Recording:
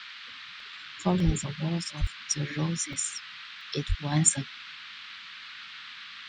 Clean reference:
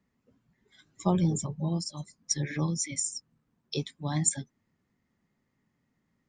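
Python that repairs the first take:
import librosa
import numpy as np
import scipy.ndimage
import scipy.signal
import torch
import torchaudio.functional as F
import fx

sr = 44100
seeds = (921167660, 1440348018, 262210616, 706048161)

y = fx.highpass(x, sr, hz=140.0, slope=24, at=(1.25, 1.37), fade=0.02)
y = fx.highpass(y, sr, hz=140.0, slope=24, at=(2.0, 2.12), fade=0.02)
y = fx.highpass(y, sr, hz=140.0, slope=24, at=(3.88, 4.0), fade=0.02)
y = fx.fix_interpolate(y, sr, at_s=(0.6, 1.2, 2.07, 2.93, 3.61), length_ms=1.8)
y = fx.noise_reduce(y, sr, print_start_s=0.13, print_end_s=0.63, reduce_db=30.0)
y = fx.fix_level(y, sr, at_s=4.12, step_db=-4.5)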